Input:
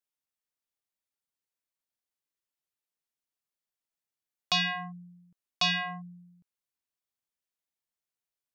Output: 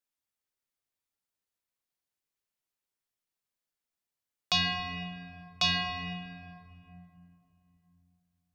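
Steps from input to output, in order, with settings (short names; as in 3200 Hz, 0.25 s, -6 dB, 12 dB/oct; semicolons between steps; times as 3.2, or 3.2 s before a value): octaver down 1 oct, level -4 dB; dynamic EQ 1200 Hz, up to -4 dB, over -43 dBFS, Q 0.83; on a send: reverb RT60 2.9 s, pre-delay 4 ms, DRR 4.5 dB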